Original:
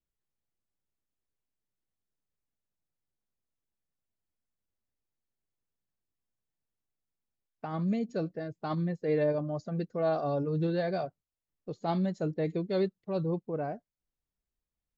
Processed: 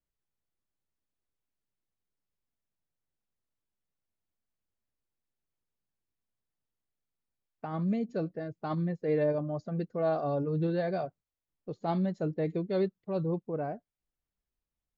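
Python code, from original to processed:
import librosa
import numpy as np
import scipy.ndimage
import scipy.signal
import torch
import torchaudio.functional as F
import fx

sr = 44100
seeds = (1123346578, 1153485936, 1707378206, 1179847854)

y = fx.lowpass(x, sr, hz=2900.0, slope=6)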